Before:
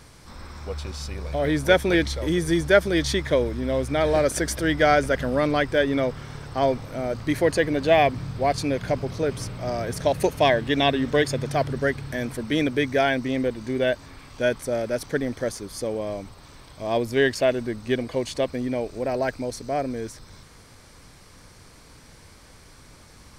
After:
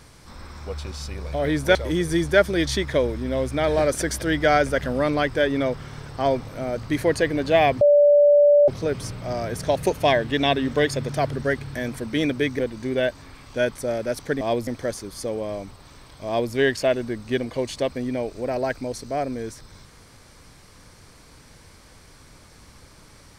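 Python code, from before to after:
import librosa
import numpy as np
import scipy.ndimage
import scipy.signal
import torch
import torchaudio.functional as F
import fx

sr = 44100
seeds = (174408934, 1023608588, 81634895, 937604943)

y = fx.edit(x, sr, fx.cut(start_s=1.75, length_s=0.37),
    fx.bleep(start_s=8.18, length_s=0.87, hz=582.0, db=-11.0),
    fx.cut(start_s=12.96, length_s=0.47),
    fx.duplicate(start_s=16.85, length_s=0.26, to_s=15.25), tone=tone)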